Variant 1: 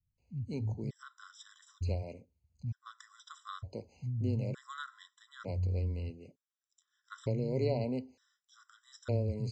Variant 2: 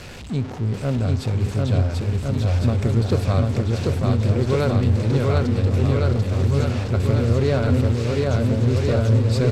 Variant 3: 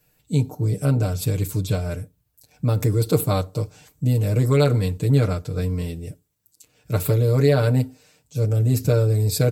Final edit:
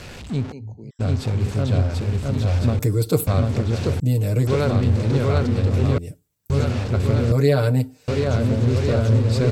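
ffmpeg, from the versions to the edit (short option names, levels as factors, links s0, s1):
-filter_complex "[2:a]asplit=4[s0][s1][s2][s3];[1:a]asplit=6[s4][s5][s6][s7][s8][s9];[s4]atrim=end=0.53[s10];[0:a]atrim=start=0.51:end=1.01[s11];[s5]atrim=start=0.99:end=2.792[s12];[s0]atrim=start=2.788:end=3.272[s13];[s6]atrim=start=3.268:end=4.002[s14];[s1]atrim=start=3.998:end=4.472[s15];[s7]atrim=start=4.468:end=5.982[s16];[s2]atrim=start=5.978:end=6.502[s17];[s8]atrim=start=6.498:end=7.322[s18];[s3]atrim=start=7.318:end=8.082[s19];[s9]atrim=start=8.078[s20];[s10][s11]acrossfade=d=0.02:c1=tri:c2=tri[s21];[s21][s12]acrossfade=d=0.02:c1=tri:c2=tri[s22];[s22][s13]acrossfade=d=0.004:c1=hsin:c2=hsin[s23];[s23][s14]acrossfade=d=0.004:c1=hsin:c2=hsin[s24];[s24][s15]acrossfade=d=0.004:c1=hsin:c2=hsin[s25];[s25][s16]acrossfade=d=0.004:c1=hsin:c2=hsin[s26];[s26][s17]acrossfade=d=0.004:c1=hsin:c2=hsin[s27];[s27][s18]acrossfade=d=0.004:c1=hsin:c2=hsin[s28];[s28][s19]acrossfade=d=0.004:c1=hsin:c2=hsin[s29];[s29][s20]acrossfade=d=0.004:c1=hsin:c2=hsin"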